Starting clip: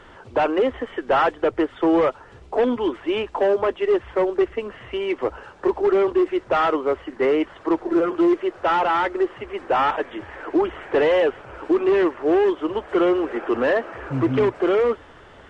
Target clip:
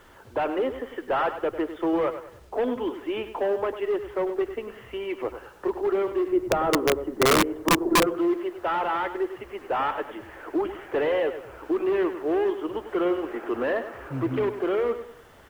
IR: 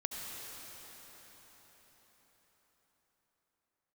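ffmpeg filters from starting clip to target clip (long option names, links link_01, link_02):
-filter_complex "[0:a]acrossover=split=4100[link_01][link_02];[link_02]acompressor=threshold=-56dB:ratio=4:attack=1:release=60[link_03];[link_01][link_03]amix=inputs=2:normalize=0,asettb=1/sr,asplit=3[link_04][link_05][link_06];[link_04]atrim=end=6.284[link_07];[link_05]atrim=start=6.28:end=8.07,asetpts=PTS-STARTPTS,afade=type=in:duration=0.004:curve=qsin,afade=type=out:start_time=1.786:duration=0.004:curve=qsin,tiltshelf=frequency=970:gain=9.5[link_08];[link_06]atrim=start=8.066[link_09];[link_07][link_08]acrossfade=duration=0.004:curve1=hsin:curve2=qsin[link_10];[link_10][link_09]acrossfade=duration=0.004:curve1=qsin:curve2=hsin,aecho=1:1:99|198|297|396:0.282|0.104|0.0386|0.0143,aeval=exprs='(mod(2.24*val(0)+1,2)-1)/2.24':channel_layout=same,acrusher=bits=8:mix=0:aa=0.000001,volume=-6.5dB"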